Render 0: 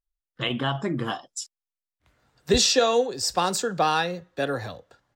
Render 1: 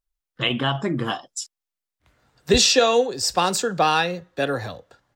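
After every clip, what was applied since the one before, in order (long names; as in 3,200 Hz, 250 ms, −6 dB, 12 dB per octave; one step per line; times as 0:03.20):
dynamic equaliser 2,600 Hz, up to +4 dB, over −40 dBFS, Q 2.6
level +3 dB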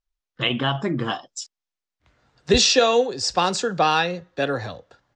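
low-pass filter 6,900 Hz 24 dB per octave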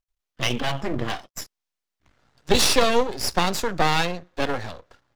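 half-wave rectification
level +2.5 dB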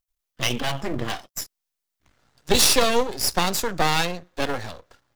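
high-shelf EQ 6,800 Hz +10 dB
level −1 dB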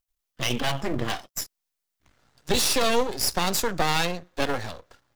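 brickwall limiter −10 dBFS, peak gain reduction 8.5 dB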